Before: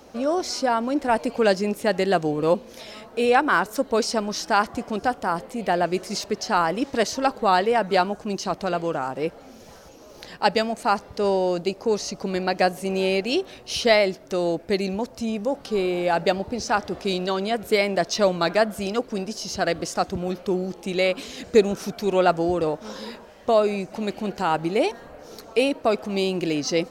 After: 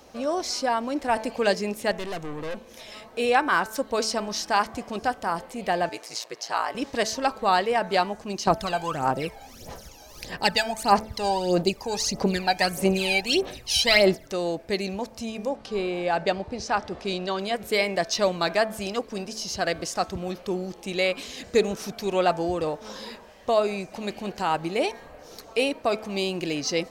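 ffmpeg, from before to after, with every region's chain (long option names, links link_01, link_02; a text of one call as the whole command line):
ffmpeg -i in.wav -filter_complex "[0:a]asettb=1/sr,asplit=3[link_01][link_02][link_03];[link_01]atrim=end=1.914[link_04];[link_02]atrim=start=1.91:end=2.92,asetpts=PTS-STARTPTS,afade=type=in:duration=0.004:curve=qsin,afade=type=out:start_time=1.006:duration=0.004:curve=qsin,equalizer=frequency=4600:width_type=o:width=0.31:gain=-5.5,aeval=exprs='(tanh(22.4*val(0)+0.35)-tanh(0.35))/22.4':channel_layout=same[link_05];[link_03]atrim=start=2.916[link_06];[link_04][link_05]acrossfade=duration=0.004:curve1=hsin:curve2=qsin[link_07];[link_07][link_06]acrossfade=duration=0.004:curve1=qsin:curve2=hsin,asettb=1/sr,asplit=3[link_08][link_09][link_10];[link_08]atrim=end=5.894[link_11];[link_09]atrim=start=5.89:end=6.75,asetpts=PTS-STARTPTS,afade=type=in:duration=0.004:curve=qsin,afade=type=out:start_time=0.856:duration=0.004:curve=qsin,highpass=500,aeval=exprs='val(0)*sin(2*PI*57*n/s)':channel_layout=same[link_12];[link_10]atrim=start=6.746[link_13];[link_11][link_12]acrossfade=duration=0.004:curve1=hsin:curve2=qsin[link_14];[link_14][link_13]acrossfade=duration=0.004:curve1=qsin:curve2=hsin,asettb=1/sr,asplit=3[link_15][link_16][link_17];[link_15]atrim=end=8.474[link_18];[link_16]atrim=start=8.47:end=14.27,asetpts=PTS-STARTPTS,afade=type=in:duration=0.004:curve=qsin,afade=type=out:start_time=5.796:duration=0.004:curve=qsin,highshelf=frequency=7500:gain=7.5,bandreject=frequency=1100:width=23,aphaser=in_gain=1:out_gain=1:delay=1.3:decay=0.71:speed=1.6:type=sinusoidal[link_19];[link_17]atrim=start=14.266[link_20];[link_18][link_19]acrossfade=duration=0.004:curve1=hsin:curve2=qsin[link_21];[link_21][link_20]acrossfade=duration=0.004:curve1=qsin:curve2=hsin,asettb=1/sr,asplit=3[link_22][link_23][link_24];[link_22]atrim=end=15.494[link_25];[link_23]atrim=start=15.49:end=17.39,asetpts=PTS-STARTPTS,afade=type=in:duration=0.004:curve=qsin,afade=type=out:start_time=1.896:duration=0.004:curve=qsin,lowpass=9700,highshelf=frequency=3900:gain=-5.5[link_26];[link_24]atrim=start=17.386[link_27];[link_25][link_26]acrossfade=duration=0.004:curve1=hsin:curve2=qsin[link_28];[link_28][link_27]acrossfade=duration=0.004:curve1=qsin:curve2=hsin,equalizer=frequency=270:width=0.45:gain=-5,bandreject=frequency=1400:width=14,bandreject=frequency=219.3:width_type=h:width=4,bandreject=frequency=438.6:width_type=h:width=4,bandreject=frequency=657.9:width_type=h:width=4,bandreject=frequency=877.2:width_type=h:width=4,bandreject=frequency=1096.5:width_type=h:width=4,bandreject=frequency=1315.8:width_type=h:width=4,bandreject=frequency=1535.1:width_type=h:width=4,bandreject=frequency=1754.4:width_type=h:width=4,bandreject=frequency=1973.7:width_type=h:width=4,bandreject=frequency=2193:width_type=h:width=4,bandreject=frequency=2412.3:width_type=h:width=4" out.wav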